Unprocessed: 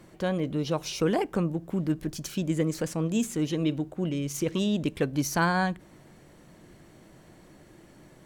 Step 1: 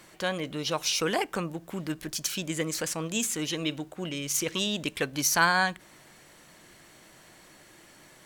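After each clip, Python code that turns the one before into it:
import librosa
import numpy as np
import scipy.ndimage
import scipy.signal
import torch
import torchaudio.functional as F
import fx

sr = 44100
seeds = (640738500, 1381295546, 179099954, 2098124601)

y = fx.tilt_shelf(x, sr, db=-8.5, hz=710.0)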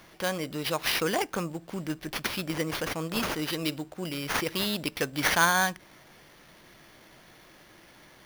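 y = fx.sample_hold(x, sr, seeds[0], rate_hz=7800.0, jitter_pct=0)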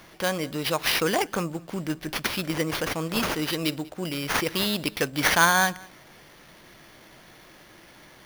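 y = x + 10.0 ** (-24.0 / 20.0) * np.pad(x, (int(193 * sr / 1000.0), 0))[:len(x)]
y = y * 10.0 ** (3.5 / 20.0)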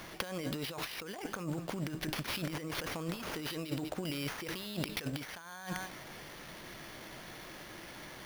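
y = fx.over_compress(x, sr, threshold_db=-35.0, ratio=-1.0)
y = y * 10.0 ** (-5.0 / 20.0)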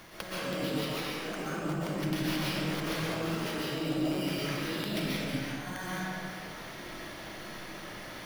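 y = fx.rev_freeverb(x, sr, rt60_s=2.3, hf_ratio=0.65, predelay_ms=95, drr_db=-9.0)
y = y * 10.0 ** (-4.0 / 20.0)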